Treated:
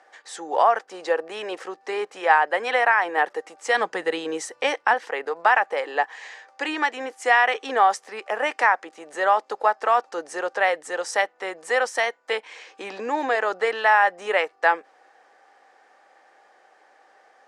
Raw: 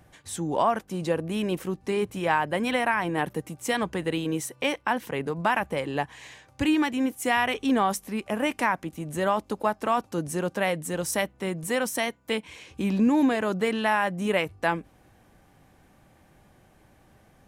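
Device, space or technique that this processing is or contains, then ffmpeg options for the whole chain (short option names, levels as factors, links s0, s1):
phone speaker on a table: -filter_complex "[0:a]asettb=1/sr,asplit=3[s0][s1][s2];[s0]atrim=end=3.744[s3];[s1]atrim=start=3.74:end=4.94,asetpts=PTS-STARTPTS,afade=t=in:d=0.004:c=qsin,afade=t=out:st=1.196:d=0.004:c=qsin,bass=f=250:g=15,treble=f=4000:g=4[s4];[s2]atrim=start=4.936[s5];[s3][s4]acrossfade=d=0.004:c1=hsin:c2=qsin[s6];[s6][s5]acrossfade=d=0.004:c1=qsin:c2=hsin,highpass=f=410:w=0.5412,highpass=f=410:w=1.3066,equalizer=f=480:t=q:w=4:g=5,equalizer=f=790:t=q:w=4:g=9,equalizer=f=1300:t=q:w=4:g=7,equalizer=f=1800:t=q:w=4:g=9,equalizer=f=4800:t=q:w=4:g=5,lowpass=f=7800:w=0.5412,lowpass=f=7800:w=1.3066"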